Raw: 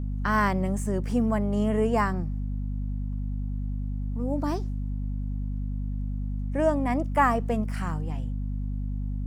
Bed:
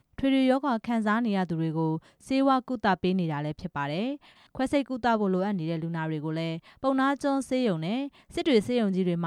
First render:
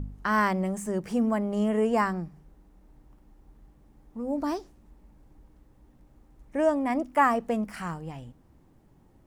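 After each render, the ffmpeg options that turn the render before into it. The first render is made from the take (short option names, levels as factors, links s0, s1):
-af "bandreject=f=50:t=h:w=4,bandreject=f=100:t=h:w=4,bandreject=f=150:t=h:w=4,bandreject=f=200:t=h:w=4,bandreject=f=250:t=h:w=4"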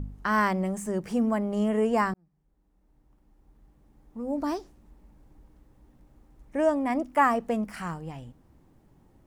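-filter_complex "[0:a]asplit=2[s0][s1];[s0]atrim=end=2.14,asetpts=PTS-STARTPTS,afade=t=out:st=2.136:d=0.004:c=hsin[s2];[s1]atrim=start=2.14,asetpts=PTS-STARTPTS,afade=t=in:d=2.29[s3];[s2][s3]concat=n=2:v=0:a=1"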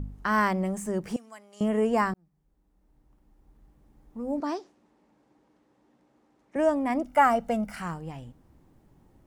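-filter_complex "[0:a]asettb=1/sr,asplit=3[s0][s1][s2];[s0]atrim=end=1.164[s3];[s1]atrim=start=1.16:end=1.61,asetpts=PTS-STARTPTS,afade=t=in:d=0.004:c=qsin,afade=t=out:st=0.446:d=0.004:c=qsin,bandpass=f=6600:t=q:w=0.89[s4];[s2]atrim=start=1.606[s5];[s3][s4]acrossfade=d=0.004:c1=hsin:c2=qsin[s6];[s6][s5]acrossfade=d=0.004:c1=qsin:c2=hsin,asettb=1/sr,asplit=3[s7][s8][s9];[s7]atrim=end=4.404[s10];[s8]atrim=start=4.4:end=6.56,asetpts=PTS-STARTPTS,afade=t=in:d=0.004:c=qsin,afade=t=out:st=2.156:d=0.004:c=qsin,highpass=270,lowpass=6700[s11];[s9]atrim=start=6.556[s12];[s10][s11]acrossfade=d=0.004:c1=hsin:c2=qsin[s13];[s13][s12]acrossfade=d=0.004:c1=qsin:c2=hsin,asettb=1/sr,asplit=3[s14][s15][s16];[s14]atrim=end=7.064[s17];[s15]atrim=start=7.06:end=7.75,asetpts=PTS-STARTPTS,afade=t=in:d=0.004:c=qsin,afade=t=out:st=0.686:d=0.004:c=qsin,aecho=1:1:1.4:0.65,atrim=end_sample=30429[s18];[s16]atrim=start=7.746[s19];[s17][s18]acrossfade=d=0.004:c1=hsin:c2=qsin[s20];[s20][s19]acrossfade=d=0.004:c1=qsin:c2=hsin"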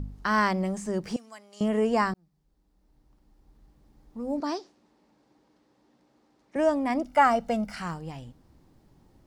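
-filter_complex "[0:a]acrossover=split=8100[s0][s1];[s1]acompressor=threshold=0.001:ratio=4:attack=1:release=60[s2];[s0][s2]amix=inputs=2:normalize=0,equalizer=f=4600:w=1.5:g=8"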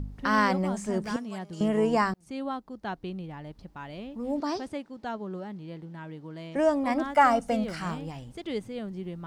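-filter_complex "[1:a]volume=0.299[s0];[0:a][s0]amix=inputs=2:normalize=0"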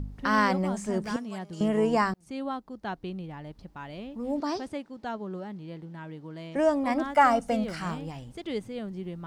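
-af anull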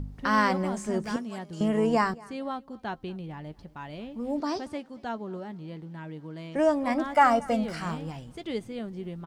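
-filter_complex "[0:a]asplit=2[s0][s1];[s1]adelay=13,volume=0.211[s2];[s0][s2]amix=inputs=2:normalize=0,aecho=1:1:226|452:0.0668|0.0201"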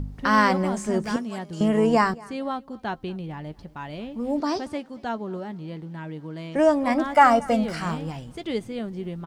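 -af "volume=1.68"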